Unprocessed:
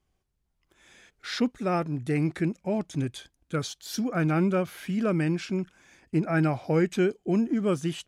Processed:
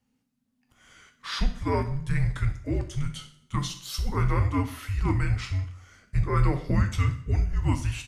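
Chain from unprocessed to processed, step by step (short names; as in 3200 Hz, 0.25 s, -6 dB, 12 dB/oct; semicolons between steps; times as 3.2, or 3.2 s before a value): feedback echo 63 ms, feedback 49%, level -17 dB; frequency shift -280 Hz; two-slope reverb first 0.44 s, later 1.6 s, from -25 dB, DRR 4.5 dB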